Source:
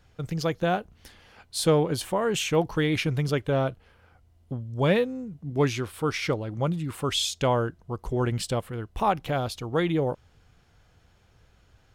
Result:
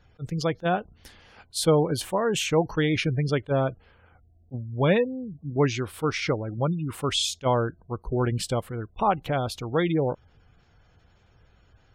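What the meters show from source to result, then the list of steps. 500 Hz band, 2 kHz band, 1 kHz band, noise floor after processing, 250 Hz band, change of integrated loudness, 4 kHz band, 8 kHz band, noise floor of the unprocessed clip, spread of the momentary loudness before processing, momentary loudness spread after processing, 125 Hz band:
+1.0 dB, +0.5 dB, +1.0 dB, -60 dBFS, +1.0 dB, +1.0 dB, +0.5 dB, +0.5 dB, -61 dBFS, 9 LU, 9 LU, +1.0 dB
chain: spectral gate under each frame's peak -30 dB strong; attack slew limiter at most 550 dB/s; gain +1 dB

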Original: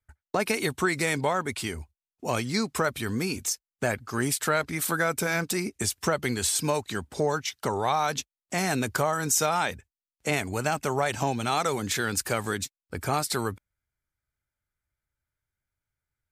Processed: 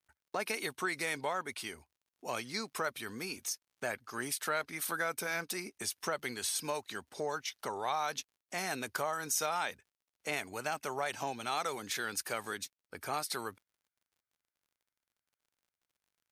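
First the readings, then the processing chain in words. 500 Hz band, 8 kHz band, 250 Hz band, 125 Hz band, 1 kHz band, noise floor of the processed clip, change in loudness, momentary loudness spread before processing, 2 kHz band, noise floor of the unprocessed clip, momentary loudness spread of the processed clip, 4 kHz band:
-10.5 dB, -9.0 dB, -14.5 dB, -19.0 dB, -8.5 dB, under -85 dBFS, -9.0 dB, 7 LU, -7.5 dB, under -85 dBFS, 8 LU, -7.0 dB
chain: HPF 550 Hz 6 dB/oct; notch 7500 Hz, Q 5.9; crackle 57/s -55 dBFS; gain -7 dB

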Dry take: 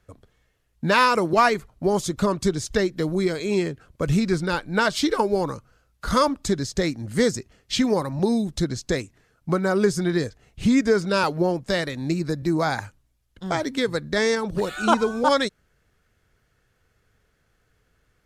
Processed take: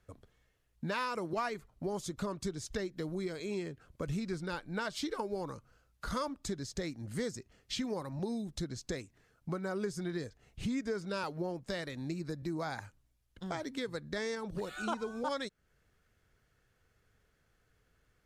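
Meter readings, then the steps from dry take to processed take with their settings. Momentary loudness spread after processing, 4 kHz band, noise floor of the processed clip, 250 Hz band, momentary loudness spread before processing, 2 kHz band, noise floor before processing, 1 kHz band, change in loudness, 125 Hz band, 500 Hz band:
7 LU, -14.5 dB, -74 dBFS, -15.0 dB, 9 LU, -15.5 dB, -68 dBFS, -16.5 dB, -15.5 dB, -13.5 dB, -15.5 dB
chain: compressor 2:1, threshold -35 dBFS, peak gain reduction 12.5 dB; gain -6 dB

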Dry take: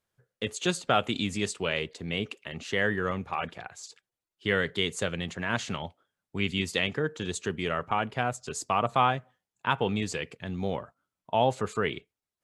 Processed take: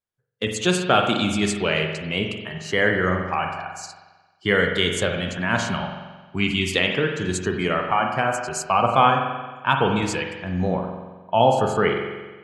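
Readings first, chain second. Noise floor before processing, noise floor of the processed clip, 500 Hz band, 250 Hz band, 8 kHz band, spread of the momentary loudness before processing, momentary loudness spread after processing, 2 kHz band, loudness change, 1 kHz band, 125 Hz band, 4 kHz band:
under -85 dBFS, -57 dBFS, +8.0 dB, +8.0 dB, +6.5 dB, 10 LU, 11 LU, +8.0 dB, +8.0 dB, +8.5 dB, +7.5 dB, +7.0 dB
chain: spectral noise reduction 17 dB; spring tank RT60 1.3 s, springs 44 ms, chirp 55 ms, DRR 3 dB; gain +6.5 dB

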